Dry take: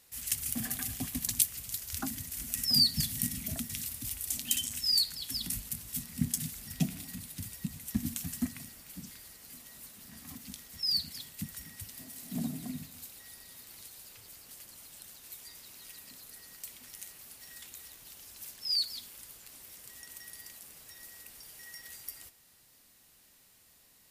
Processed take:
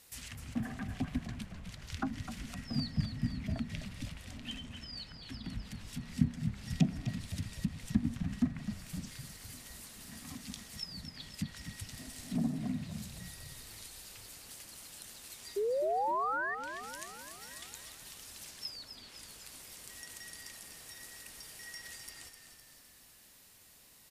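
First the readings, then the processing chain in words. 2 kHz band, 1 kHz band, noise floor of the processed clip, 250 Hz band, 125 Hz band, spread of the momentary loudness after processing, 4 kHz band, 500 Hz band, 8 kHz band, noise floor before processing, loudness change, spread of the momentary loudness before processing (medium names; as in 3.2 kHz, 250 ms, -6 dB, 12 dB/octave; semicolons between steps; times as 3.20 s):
+4.5 dB, +15.0 dB, -60 dBFS, +3.0 dB, +3.5 dB, 15 LU, -12.5 dB, +17.5 dB, -11.0 dB, -63 dBFS, -7.0 dB, 19 LU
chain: painted sound rise, 15.56–16.55 s, 390–1900 Hz -34 dBFS; low-pass that closes with the level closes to 1.4 kHz, closed at -32 dBFS; frequency-shifting echo 255 ms, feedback 58%, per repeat -37 Hz, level -9 dB; trim +2.5 dB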